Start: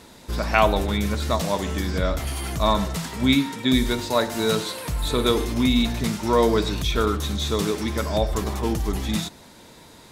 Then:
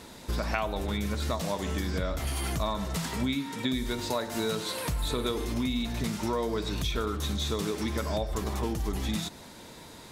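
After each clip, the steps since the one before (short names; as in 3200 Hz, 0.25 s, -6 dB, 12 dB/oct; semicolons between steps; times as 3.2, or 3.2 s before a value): compressor 6:1, threshold -27 dBFS, peak gain reduction 14.5 dB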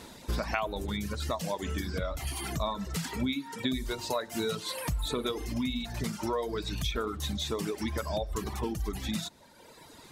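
reverb removal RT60 1.7 s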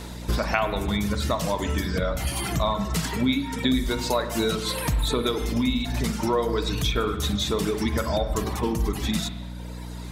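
hum 60 Hz, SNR 14 dB; spring tank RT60 1.2 s, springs 39/50 ms, chirp 20 ms, DRR 8 dB; gain +7 dB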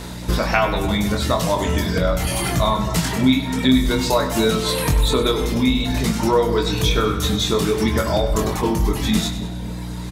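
doubler 23 ms -5 dB; on a send: split-band echo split 970 Hz, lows 0.266 s, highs 98 ms, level -12.5 dB; on the sum: gain +4.5 dB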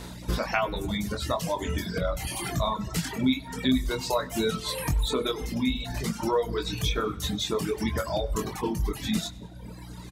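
reverb removal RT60 1.5 s; gain -7.5 dB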